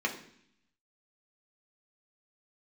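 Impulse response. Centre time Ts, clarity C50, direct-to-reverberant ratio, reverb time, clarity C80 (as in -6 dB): 15 ms, 10.5 dB, -0.5 dB, 0.65 s, 13.5 dB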